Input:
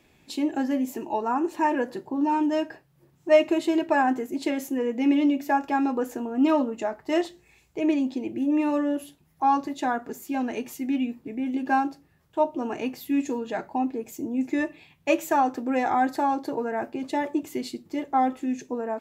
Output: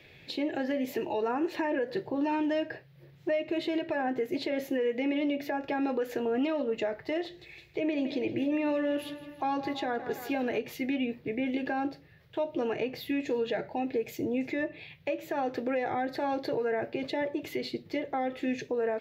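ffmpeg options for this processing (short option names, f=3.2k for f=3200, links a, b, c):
-filter_complex "[0:a]asettb=1/sr,asplit=3[a][b][c];[a]atrim=end=7.254[d];[b]atrim=start=7.25:end=10.61,asetpts=PTS-STARTPTS,afade=t=in:d=0.004:c=qsin,afade=t=out:st=3.356:d=0.004:c=qsin,aecho=1:1:163|326|489|652|815|978:0.141|0.0848|0.0509|0.0305|0.0183|0.011,atrim=end_sample=148176[e];[c]atrim=start=10.606[f];[d][e]acrossfade=d=0.004:c1=hsin:c2=qsin[g];[g][f]acrossfade=d=0.004:c1=qsin:c2=hsin,asettb=1/sr,asplit=3[h][i][j];[h]atrim=end=13.504[k];[i]atrim=start=13.5:end=14.32,asetpts=PTS-STARTPTS,afade=t=in:d=0.004:c=qsin,afade=t=out:st=0.816:d=0.004:c=qsin,bandreject=f=1.1k:w=5.2[l];[j]atrim=start=14.316[m];[k][l]acrossfade=d=0.004:c1=hsin:c2=qsin[n];[n][m]acrossfade=d=0.004:c1=qsin:c2=hsin,equalizer=f=125:t=o:w=1:g=10,equalizer=f=250:t=o:w=1:g=-7,equalizer=f=500:t=o:w=1:g=10,equalizer=f=1k:t=o:w=1:g=-6,equalizer=f=2k:t=o:w=1:g=10,equalizer=f=4k:t=o:w=1:g=10,equalizer=f=8k:t=o:w=1:g=-12,acrossover=split=540|1300[o][p][q];[o]acompressor=threshold=-26dB:ratio=4[r];[p]acompressor=threshold=-33dB:ratio=4[s];[q]acompressor=threshold=-39dB:ratio=4[t];[r][s][t]amix=inputs=3:normalize=0,alimiter=limit=-22dB:level=0:latency=1:release=113"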